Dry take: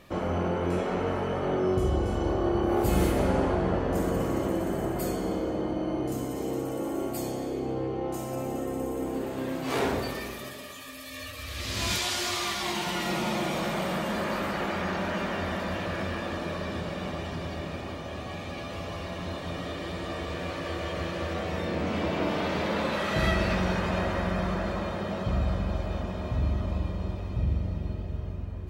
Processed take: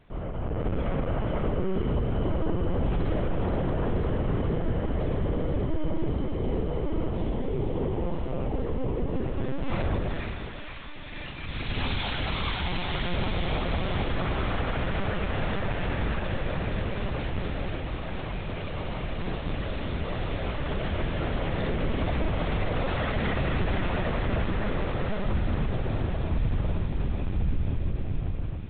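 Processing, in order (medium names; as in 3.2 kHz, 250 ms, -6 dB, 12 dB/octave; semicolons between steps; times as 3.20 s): high-pass 42 Hz 12 dB/octave; LPC vocoder at 8 kHz pitch kept; bass shelf 240 Hz +8 dB; peak limiter -18 dBFS, peak gain reduction 10.5 dB; level rider gain up to 7.5 dB; on a send: feedback echo behind a high-pass 478 ms, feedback 69%, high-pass 1.7 kHz, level -4 dB; on the sum: trim -8 dB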